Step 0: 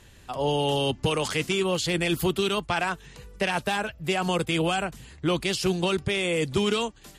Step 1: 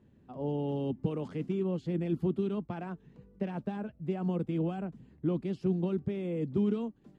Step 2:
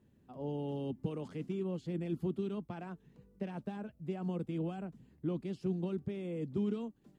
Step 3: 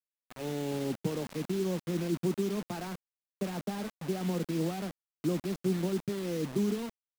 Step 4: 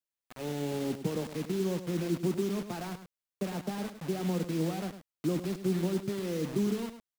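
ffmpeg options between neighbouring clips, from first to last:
ffmpeg -i in.wav -af "bandpass=frequency=220:width_type=q:width=1.7:csg=0" out.wav
ffmpeg -i in.wav -af "aemphasis=mode=production:type=cd,volume=-5dB" out.wav
ffmpeg -i in.wav -filter_complex "[0:a]highpass=frequency=110:width=0.5412,highpass=frequency=110:width=1.3066,acrossover=split=150|1600[link_01][link_02][link_03];[link_02]dynaudnorm=framelen=160:gausssize=7:maxgain=6dB[link_04];[link_01][link_04][link_03]amix=inputs=3:normalize=0,acrusher=bits=6:mix=0:aa=0.000001" out.wav
ffmpeg -i in.wav -af "aecho=1:1:104:0.282" out.wav

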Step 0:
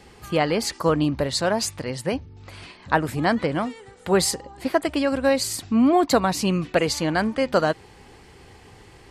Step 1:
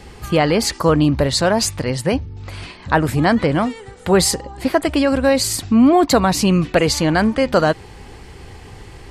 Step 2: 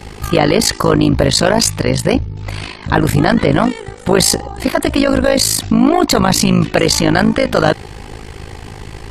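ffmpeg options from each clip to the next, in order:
ffmpeg -i in.wav -filter_complex "[0:a]lowshelf=frequency=88:gain=10,asplit=2[link_01][link_02];[link_02]alimiter=limit=-16dB:level=0:latency=1:release=19,volume=-1dB[link_03];[link_01][link_03]amix=inputs=2:normalize=0,volume=1.5dB" out.wav
ffmpeg -i in.wav -af "apsyclip=14dB,tremolo=f=53:d=0.857,volume=-3dB" out.wav

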